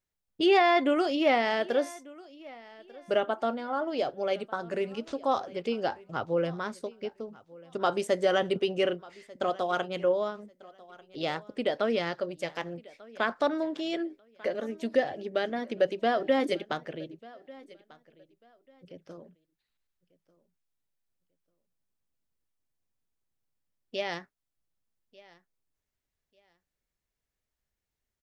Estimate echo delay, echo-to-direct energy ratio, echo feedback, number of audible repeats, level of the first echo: 1193 ms, -22.0 dB, 23%, 2, -22.0 dB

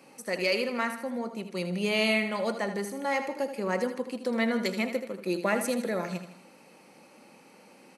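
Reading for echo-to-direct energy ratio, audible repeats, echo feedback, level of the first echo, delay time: -9.0 dB, 4, 48%, -10.0 dB, 79 ms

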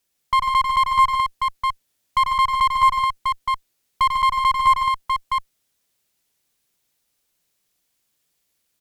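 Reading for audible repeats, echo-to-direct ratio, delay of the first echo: 3, -0.5 dB, 94 ms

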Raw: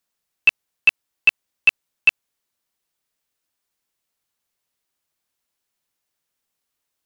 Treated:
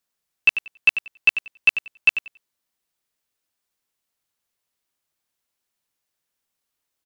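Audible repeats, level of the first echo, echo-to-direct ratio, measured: 2, -11.0 dB, -11.0 dB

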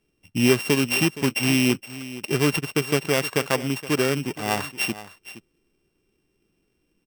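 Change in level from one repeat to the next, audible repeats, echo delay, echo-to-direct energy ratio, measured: no regular repeats, 1, 469 ms, -15.5 dB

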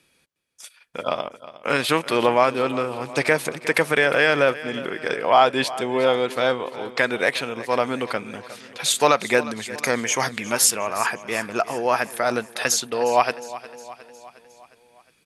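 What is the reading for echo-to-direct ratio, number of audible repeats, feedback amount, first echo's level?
-15.0 dB, 4, 56%, -16.5 dB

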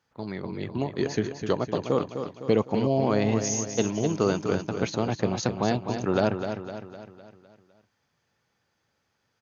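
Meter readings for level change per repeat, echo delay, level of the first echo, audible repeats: -6.0 dB, 254 ms, -8.0 dB, 5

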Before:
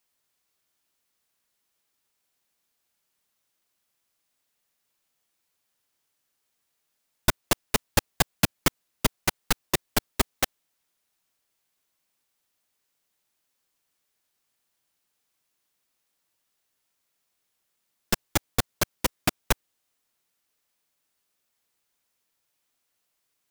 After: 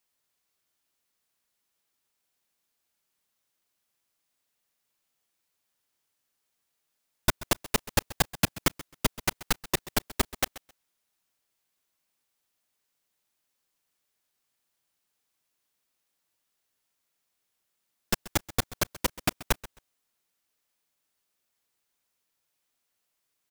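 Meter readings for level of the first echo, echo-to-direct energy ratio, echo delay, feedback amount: -18.0 dB, -18.0 dB, 132 ms, 18%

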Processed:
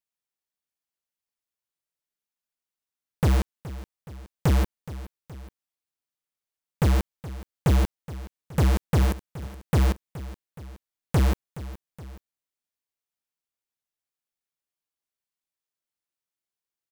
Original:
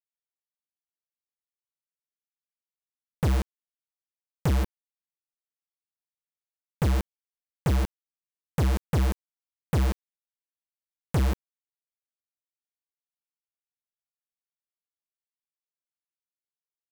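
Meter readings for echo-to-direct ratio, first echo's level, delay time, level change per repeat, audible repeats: -15.0 dB, -16.0 dB, 421 ms, -5.0 dB, 2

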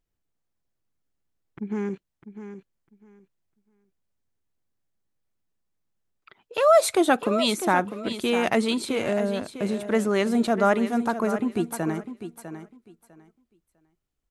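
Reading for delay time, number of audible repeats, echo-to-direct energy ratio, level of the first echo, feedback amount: 651 ms, 2, -11.0 dB, -11.0 dB, 19%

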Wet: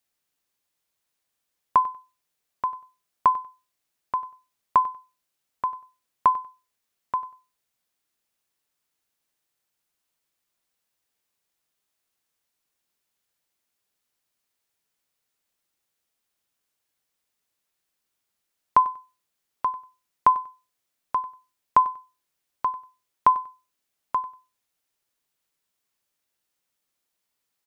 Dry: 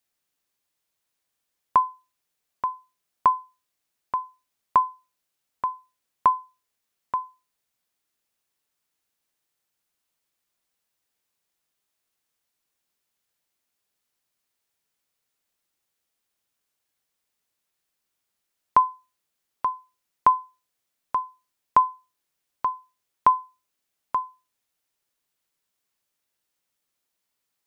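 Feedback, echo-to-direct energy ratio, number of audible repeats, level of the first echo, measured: 19%, -18.5 dB, 2, -18.5 dB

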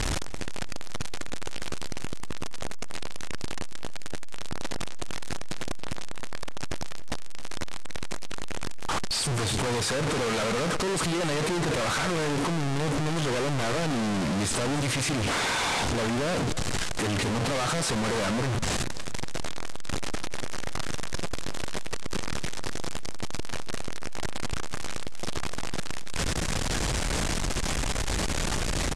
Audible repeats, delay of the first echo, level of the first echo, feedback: 2, 278 ms, -17.0 dB, 33%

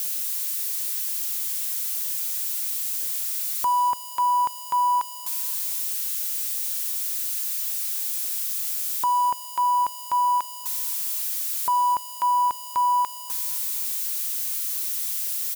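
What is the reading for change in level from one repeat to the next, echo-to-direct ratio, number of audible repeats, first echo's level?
-10.5 dB, -14.5 dB, 2, -15.0 dB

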